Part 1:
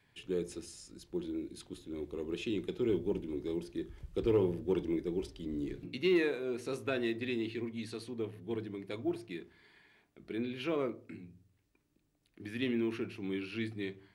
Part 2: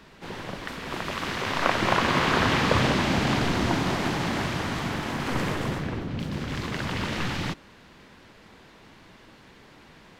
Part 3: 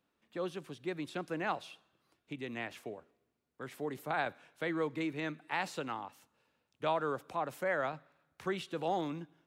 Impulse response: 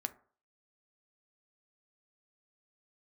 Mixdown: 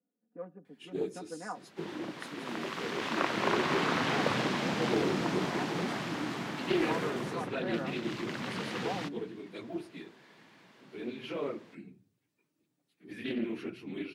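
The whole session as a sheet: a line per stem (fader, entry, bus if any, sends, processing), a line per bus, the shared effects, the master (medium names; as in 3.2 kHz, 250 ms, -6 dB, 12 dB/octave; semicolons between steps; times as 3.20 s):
-1.5 dB, 0.65 s, no send, phase randomisation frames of 50 ms
-7.5 dB, 1.55 s, no send, none
-9.0 dB, 0.00 s, send -8.5 dB, local Wiener filter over 41 samples; low-pass 1.7 kHz 24 dB/octave; comb 4.1 ms, depth 92%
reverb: on, RT60 0.45 s, pre-delay 4 ms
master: high-pass 140 Hz 24 dB/octave; loudspeaker Doppler distortion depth 0.28 ms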